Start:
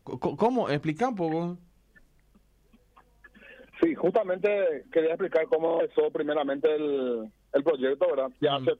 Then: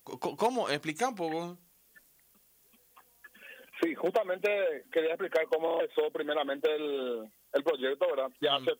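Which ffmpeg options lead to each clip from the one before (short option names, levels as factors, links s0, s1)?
-af "aemphasis=mode=production:type=riaa,volume=0.794"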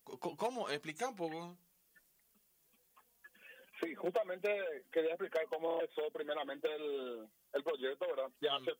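-af "flanger=delay=4.5:depth=1.7:regen=41:speed=1.3:shape=sinusoidal,volume=0.596"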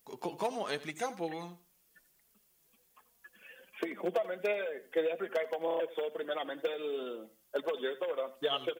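-af "aecho=1:1:86|172:0.141|0.0339,volume=1.5"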